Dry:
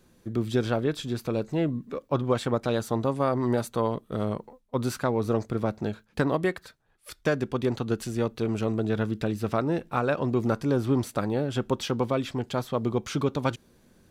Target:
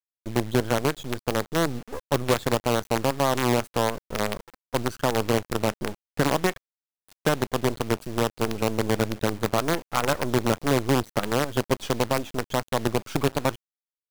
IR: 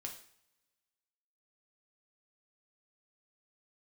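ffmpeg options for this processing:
-filter_complex "[0:a]afftdn=noise_reduction=23:noise_floor=-37,asplit=2[link_01][link_02];[link_02]acompressor=threshold=-33dB:ratio=12,volume=-2dB[link_03];[link_01][link_03]amix=inputs=2:normalize=0,acrusher=bits=4:dc=4:mix=0:aa=0.000001"

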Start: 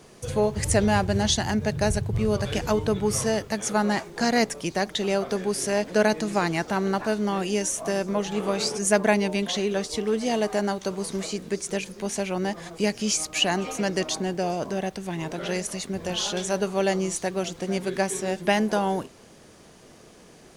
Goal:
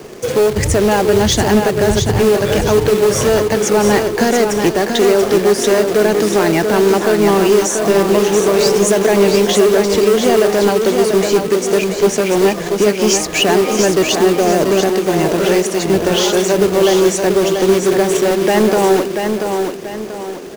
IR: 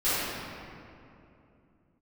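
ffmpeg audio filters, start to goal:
-filter_complex "[0:a]equalizer=frequency=400:width_type=o:width=0.67:gain=8,equalizer=frequency=4000:width_type=o:width=0.67:gain=-4,equalizer=frequency=10000:width_type=o:width=0.67:gain=-9,asplit=2[link_01][link_02];[link_02]acontrast=76,volume=-1dB[link_03];[link_01][link_03]amix=inputs=2:normalize=0,alimiter=limit=-5.5dB:level=0:latency=1:release=157,acrossover=split=170|5500[link_04][link_05][link_06];[link_04]tremolo=f=1.5:d=0.93[link_07];[link_05]acrusher=bits=2:mode=log:mix=0:aa=0.000001[link_08];[link_07][link_08][link_06]amix=inputs=3:normalize=0,asoftclip=type=tanh:threshold=-10dB,aecho=1:1:686|1372|2058|2744|3430:0.531|0.202|0.0767|0.0291|0.0111,volume=4dB"

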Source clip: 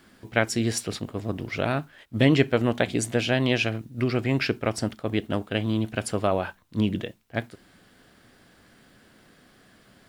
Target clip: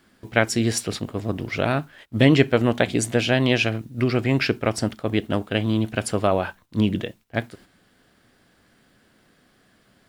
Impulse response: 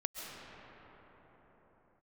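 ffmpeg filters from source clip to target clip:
-af "agate=range=-7dB:threshold=-51dB:ratio=16:detection=peak,volume=3.5dB"

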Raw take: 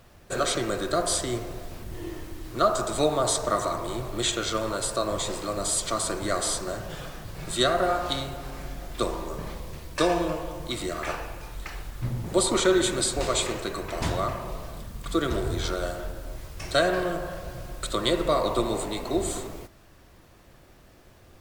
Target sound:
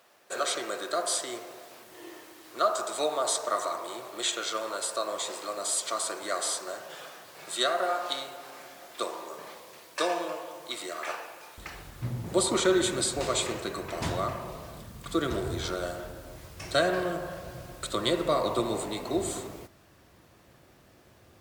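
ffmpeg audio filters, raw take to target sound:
ffmpeg -i in.wav -af "asetnsamples=nb_out_samples=441:pad=0,asendcmd='11.58 highpass f 79',highpass=490,volume=-2.5dB" out.wav

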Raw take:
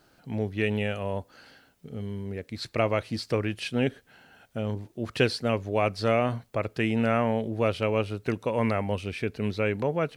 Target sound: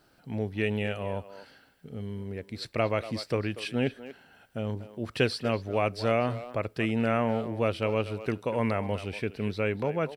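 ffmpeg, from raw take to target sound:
ffmpeg -i in.wav -filter_complex "[0:a]bandreject=frequency=6600:width=9.5,asplit=2[link_01][link_02];[link_02]adelay=240,highpass=300,lowpass=3400,asoftclip=type=hard:threshold=-17dB,volume=-13dB[link_03];[link_01][link_03]amix=inputs=2:normalize=0,volume=-2dB" out.wav

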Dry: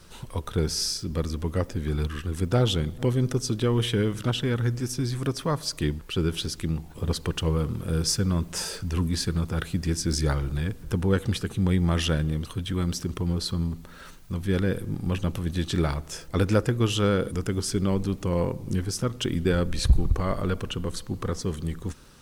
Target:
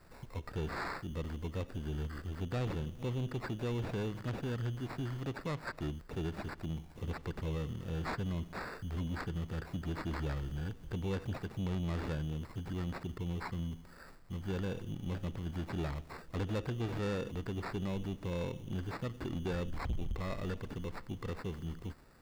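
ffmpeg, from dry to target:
ffmpeg -i in.wav -filter_complex "[0:a]acrusher=samples=14:mix=1:aa=0.000001,acrossover=split=4400[link_01][link_02];[link_02]acompressor=threshold=-51dB:ratio=4:attack=1:release=60[link_03];[link_01][link_03]amix=inputs=2:normalize=0,asoftclip=type=tanh:threshold=-21.5dB,volume=-9dB" out.wav

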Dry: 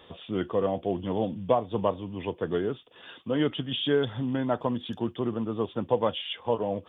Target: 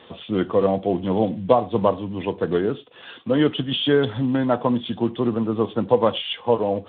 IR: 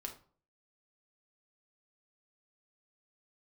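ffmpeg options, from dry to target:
-filter_complex "[0:a]asplit=2[link_01][link_02];[1:a]atrim=start_sample=2205,atrim=end_sample=4410,asetrate=36603,aresample=44100[link_03];[link_02][link_03]afir=irnorm=-1:irlink=0,volume=-9dB[link_04];[link_01][link_04]amix=inputs=2:normalize=0,volume=5dB" -ar 8000 -c:a libspeex -b:a 18k

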